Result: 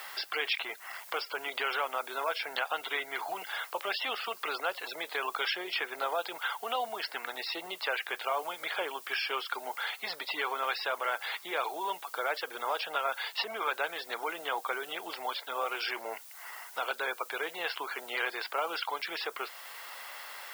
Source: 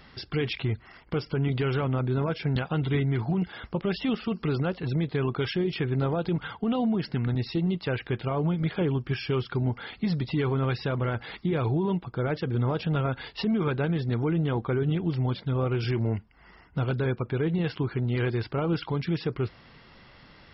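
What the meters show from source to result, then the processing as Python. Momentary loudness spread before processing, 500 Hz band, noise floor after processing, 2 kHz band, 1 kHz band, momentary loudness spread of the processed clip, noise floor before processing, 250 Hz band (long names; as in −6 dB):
5 LU, −8.0 dB, −50 dBFS, +4.5 dB, +3.5 dB, 5 LU, −54 dBFS, −24.0 dB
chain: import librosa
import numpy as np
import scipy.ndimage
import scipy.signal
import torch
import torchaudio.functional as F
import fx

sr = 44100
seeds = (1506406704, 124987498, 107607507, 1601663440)

y = scipy.signal.sosfilt(scipy.signal.butter(4, 660.0, 'highpass', fs=sr, output='sos'), x)
y = fx.dmg_noise_colour(y, sr, seeds[0], colour='blue', level_db=-58.0)
y = fx.band_squash(y, sr, depth_pct=40)
y = F.gain(torch.from_numpy(y), 4.0).numpy()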